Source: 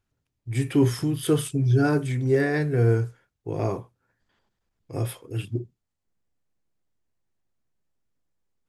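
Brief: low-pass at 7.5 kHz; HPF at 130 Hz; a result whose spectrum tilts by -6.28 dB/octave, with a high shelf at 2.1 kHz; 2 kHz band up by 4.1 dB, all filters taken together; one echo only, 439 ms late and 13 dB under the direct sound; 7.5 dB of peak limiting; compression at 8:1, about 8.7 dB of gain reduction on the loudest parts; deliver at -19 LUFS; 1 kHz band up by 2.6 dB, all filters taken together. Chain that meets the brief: high-pass 130 Hz; low-pass 7.5 kHz; peaking EQ 1 kHz +3.5 dB; peaking EQ 2 kHz +7.5 dB; treble shelf 2.1 kHz -7 dB; compression 8:1, threshold -24 dBFS; peak limiter -24 dBFS; delay 439 ms -13 dB; trim +15 dB

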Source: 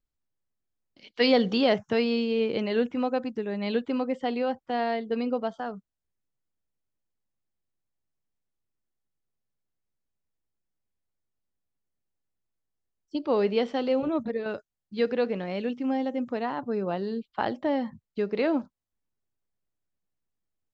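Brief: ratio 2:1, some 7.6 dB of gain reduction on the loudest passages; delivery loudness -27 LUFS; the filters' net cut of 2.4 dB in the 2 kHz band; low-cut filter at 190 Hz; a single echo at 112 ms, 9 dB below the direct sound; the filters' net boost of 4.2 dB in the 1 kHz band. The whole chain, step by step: high-pass 190 Hz; peaking EQ 1 kHz +7 dB; peaking EQ 2 kHz -5 dB; compression 2:1, threshold -29 dBFS; delay 112 ms -9 dB; trim +4.5 dB

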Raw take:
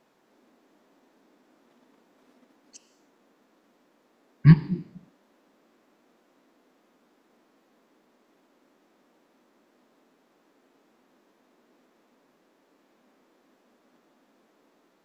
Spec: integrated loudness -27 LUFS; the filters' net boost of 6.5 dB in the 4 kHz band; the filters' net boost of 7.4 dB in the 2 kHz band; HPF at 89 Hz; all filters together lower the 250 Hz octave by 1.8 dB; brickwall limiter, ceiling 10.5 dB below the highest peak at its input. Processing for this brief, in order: high-pass 89 Hz; peaking EQ 250 Hz -3.5 dB; peaking EQ 2 kHz +7.5 dB; peaking EQ 4 kHz +6 dB; trim +4 dB; peak limiter -9.5 dBFS

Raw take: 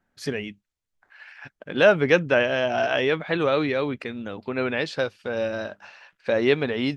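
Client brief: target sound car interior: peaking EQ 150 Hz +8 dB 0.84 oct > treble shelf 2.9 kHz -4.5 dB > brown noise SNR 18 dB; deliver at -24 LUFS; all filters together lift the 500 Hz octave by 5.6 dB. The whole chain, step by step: peaking EQ 150 Hz +8 dB 0.84 oct; peaking EQ 500 Hz +6.5 dB; treble shelf 2.9 kHz -4.5 dB; brown noise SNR 18 dB; trim -4.5 dB

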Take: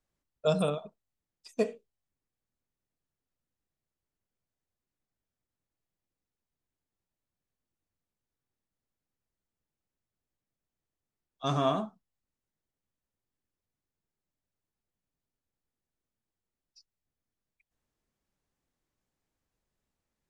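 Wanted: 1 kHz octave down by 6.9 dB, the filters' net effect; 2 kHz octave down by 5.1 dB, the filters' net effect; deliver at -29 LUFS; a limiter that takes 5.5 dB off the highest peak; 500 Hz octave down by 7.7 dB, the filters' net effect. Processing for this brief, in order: peaking EQ 500 Hz -8 dB; peaking EQ 1 kHz -5 dB; peaking EQ 2 kHz -5.5 dB; trim +8.5 dB; peak limiter -16 dBFS

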